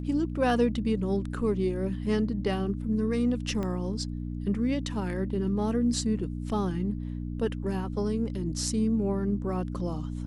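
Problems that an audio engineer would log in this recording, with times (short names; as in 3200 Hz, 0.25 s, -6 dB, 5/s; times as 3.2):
hum 60 Hz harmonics 5 -34 dBFS
3.63 pop -21 dBFS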